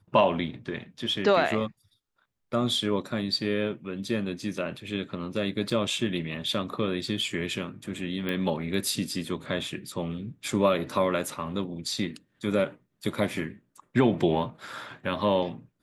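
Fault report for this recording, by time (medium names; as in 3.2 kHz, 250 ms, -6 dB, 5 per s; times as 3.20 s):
5.70 s: dropout 3.8 ms
8.29 s: pop -18 dBFS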